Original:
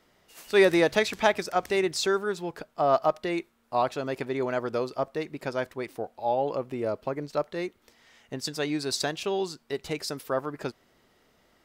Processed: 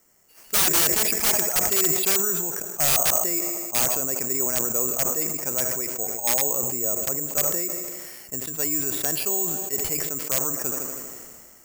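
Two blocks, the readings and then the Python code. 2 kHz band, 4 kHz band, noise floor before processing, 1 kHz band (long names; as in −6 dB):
−0.5 dB, +5.0 dB, −66 dBFS, −4.0 dB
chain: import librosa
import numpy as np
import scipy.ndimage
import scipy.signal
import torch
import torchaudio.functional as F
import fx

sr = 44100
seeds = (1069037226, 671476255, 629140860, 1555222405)

y = scipy.signal.sosfilt(scipy.signal.butter(4, 3000.0, 'lowpass', fs=sr, output='sos'), x)
y = fx.echo_heads(y, sr, ms=79, heads='first and second', feedback_pct=58, wet_db=-23.5)
y = (np.kron(scipy.signal.resample_poly(y, 1, 6), np.eye(6)[0]) * 6)[:len(y)]
y = (np.mod(10.0 ** (2.0 / 20.0) * y + 1.0, 2.0) - 1.0) / 10.0 ** (2.0 / 20.0)
y = fx.sustainer(y, sr, db_per_s=29.0)
y = y * librosa.db_to_amplitude(-4.5)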